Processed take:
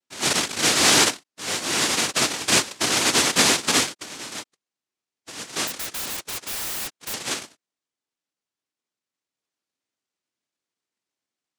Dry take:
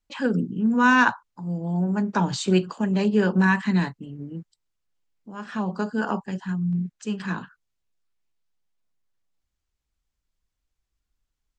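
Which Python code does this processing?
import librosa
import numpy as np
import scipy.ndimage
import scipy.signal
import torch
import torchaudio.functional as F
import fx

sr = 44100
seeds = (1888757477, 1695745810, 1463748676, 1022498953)

y = fx.noise_vocoder(x, sr, seeds[0], bands=1)
y = fx.peak_eq(y, sr, hz=300.0, db=6.5, octaves=0.97)
y = fx.overflow_wrap(y, sr, gain_db=24.5, at=(5.67, 7.14))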